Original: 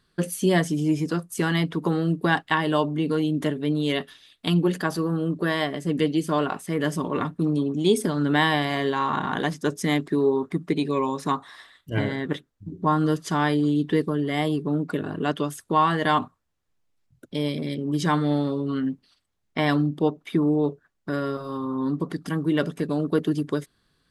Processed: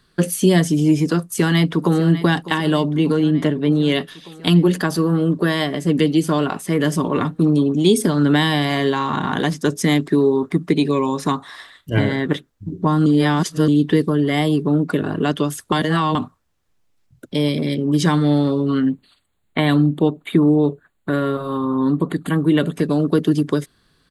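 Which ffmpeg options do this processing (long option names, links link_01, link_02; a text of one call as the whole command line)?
ffmpeg -i in.wav -filter_complex "[0:a]asplit=2[link_01][link_02];[link_02]afade=type=in:start_time=1.18:duration=0.01,afade=type=out:start_time=2.1:duration=0.01,aecho=0:1:600|1200|1800|2400|3000|3600|4200|4800|5400:0.177828|0.12448|0.0871357|0.060995|0.0426965|0.0298875|0.0209213|0.0146449|0.0102514[link_03];[link_01][link_03]amix=inputs=2:normalize=0,asettb=1/sr,asplit=3[link_04][link_05][link_06];[link_04]atrim=end=3.124[link_07];[link_05]atrim=start=3.12:end=3.92,asetpts=PTS-STARTPTS,afade=type=in:duration=0.004:curve=qsin,afade=type=out:start_time=0.796:duration=0.004:curve=qsin,lowpass=frequency=3200:poles=1[link_08];[link_06]atrim=start=3.916[link_09];[link_07][link_08]acrossfade=duration=0.004:curve1=hsin:curve2=qsin[link_10];[link_10][link_09]acrossfade=duration=0.004:curve1=qsin:curve2=hsin,asettb=1/sr,asplit=3[link_11][link_12][link_13];[link_11]atrim=end=18.904[link_14];[link_12]atrim=start=18.9:end=22.74,asetpts=PTS-STARTPTS,afade=type=in:duration=0.004:curve=qsin,afade=type=out:start_time=3.836:duration=0.004:curve=qsin,asuperstop=centerf=5500:order=8:qfactor=2.4[link_15];[link_13]atrim=start=22.736[link_16];[link_14][link_15]acrossfade=duration=0.004:curve1=hsin:curve2=qsin[link_17];[link_17][link_16]acrossfade=duration=0.004:curve1=qsin:curve2=hsin,asplit=5[link_18][link_19][link_20][link_21][link_22];[link_18]atrim=end=13.062[link_23];[link_19]atrim=start=13.058:end=13.682,asetpts=PTS-STARTPTS,areverse[link_24];[link_20]atrim=start=13.678:end=15.722[link_25];[link_21]atrim=start=15.718:end=16.152,asetpts=PTS-STARTPTS,areverse[link_26];[link_22]atrim=start=16.148[link_27];[link_23][link_24]acrossfade=duration=0.004:curve1=hsin:curve2=hsin[link_28];[link_28][link_25]acrossfade=duration=0.004:curve1=hsin:curve2=hsin[link_29];[link_29][link_26]acrossfade=duration=0.004:curve1=hsin:curve2=hsin[link_30];[link_30][link_27]acrossfade=duration=0.004:curve1=hsin:curve2=hsin,acrossover=split=350|3000[link_31][link_32][link_33];[link_32]acompressor=threshold=-28dB:ratio=6[link_34];[link_31][link_34][link_33]amix=inputs=3:normalize=0,volume=8dB" out.wav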